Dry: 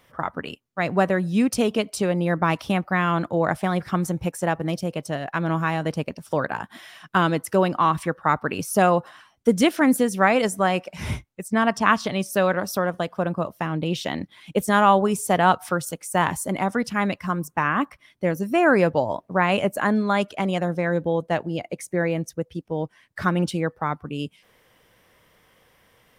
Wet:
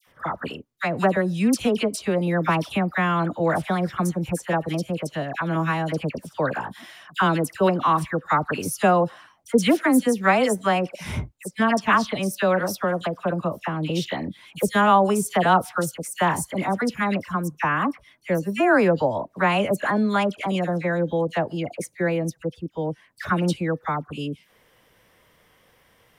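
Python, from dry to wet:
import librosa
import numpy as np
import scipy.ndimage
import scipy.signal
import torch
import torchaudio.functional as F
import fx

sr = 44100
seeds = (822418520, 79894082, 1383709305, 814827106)

y = fx.dispersion(x, sr, late='lows', ms=72.0, hz=1600.0)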